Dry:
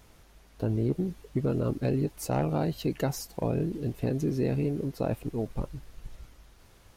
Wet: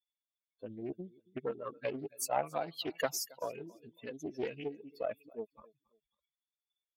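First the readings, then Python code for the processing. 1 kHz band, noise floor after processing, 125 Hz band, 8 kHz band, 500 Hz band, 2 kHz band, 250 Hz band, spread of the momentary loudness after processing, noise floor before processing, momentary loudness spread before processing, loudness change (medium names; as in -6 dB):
-1.5 dB, under -85 dBFS, -24.0 dB, +1.0 dB, -6.5 dB, -0.5 dB, -15.0 dB, 14 LU, -57 dBFS, 7 LU, -9.0 dB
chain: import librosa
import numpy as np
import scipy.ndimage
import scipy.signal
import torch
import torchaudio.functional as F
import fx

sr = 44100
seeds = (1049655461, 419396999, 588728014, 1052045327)

y = fx.bin_expand(x, sr, power=3.0)
y = scipy.signal.sosfilt(scipy.signal.butter(2, 600.0, 'highpass', fs=sr, output='sos'), y)
y = fx.wow_flutter(y, sr, seeds[0], rate_hz=2.1, depth_cents=16.0)
y = fx.echo_feedback(y, sr, ms=274, feedback_pct=31, wet_db=-23.5)
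y = fx.doppler_dist(y, sr, depth_ms=0.26)
y = y * 10.0 ** (6.5 / 20.0)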